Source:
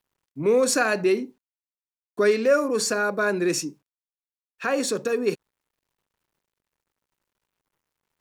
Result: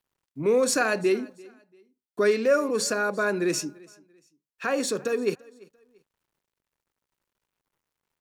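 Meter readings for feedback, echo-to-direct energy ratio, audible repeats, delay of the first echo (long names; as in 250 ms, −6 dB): 30%, −23.5 dB, 2, 341 ms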